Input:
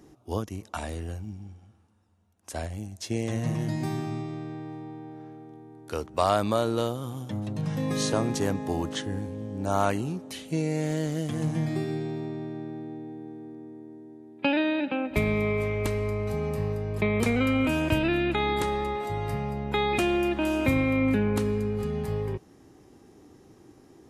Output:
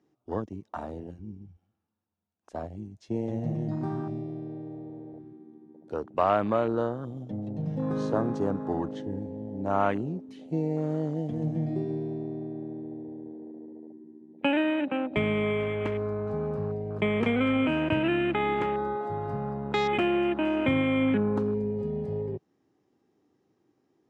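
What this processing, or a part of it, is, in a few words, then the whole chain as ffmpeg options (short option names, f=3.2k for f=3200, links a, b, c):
over-cleaned archive recording: -af "highpass=130,lowpass=5.2k,afwtdn=0.0178"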